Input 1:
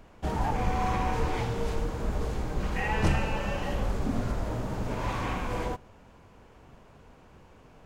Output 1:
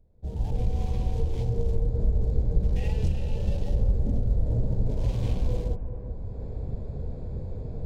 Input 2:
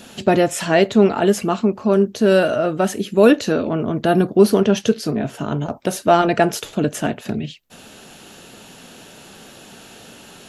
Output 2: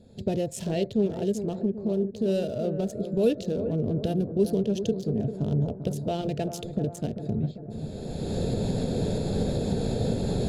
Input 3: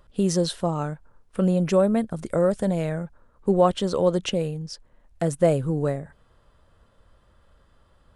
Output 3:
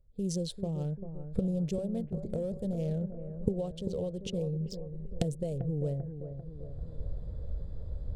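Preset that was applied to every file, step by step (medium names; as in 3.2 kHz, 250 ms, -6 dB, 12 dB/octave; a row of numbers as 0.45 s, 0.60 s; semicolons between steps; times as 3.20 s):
local Wiener filter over 15 samples; recorder AGC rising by 23 dB/s; FFT filter 100 Hz 0 dB, 320 Hz -14 dB, 470 Hz -7 dB, 1.2 kHz -30 dB, 2 kHz -22 dB, 3.2 kHz -8 dB; on a send: bucket-brigade echo 393 ms, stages 4096, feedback 56%, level -9.5 dB; on the sum: peak normalisation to -12 dBFS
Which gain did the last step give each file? -6.0 dB, -1.5 dB, -8.0 dB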